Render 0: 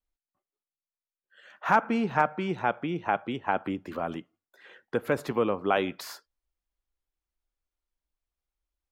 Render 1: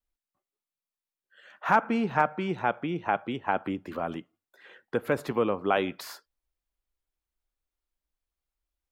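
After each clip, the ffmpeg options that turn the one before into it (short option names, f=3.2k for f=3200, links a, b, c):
-af "equalizer=f=6.1k:t=o:w=0.77:g=-2"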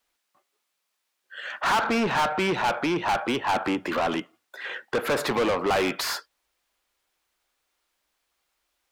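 -filter_complex "[0:a]asplit=2[a][b];[b]highpass=f=720:p=1,volume=33dB,asoftclip=type=tanh:threshold=-8dB[c];[a][c]amix=inputs=2:normalize=0,lowpass=f=5.4k:p=1,volume=-6dB,volume=-7.5dB"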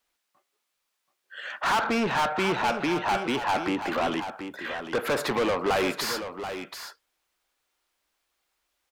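-af "aecho=1:1:731:0.335,volume=-1.5dB"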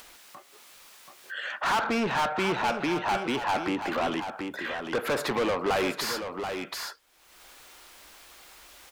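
-af "acompressor=mode=upward:threshold=-27dB:ratio=2.5,volume=-1.5dB"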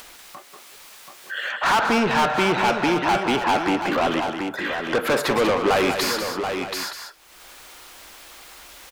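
-af "aecho=1:1:190:0.422,volume=6.5dB"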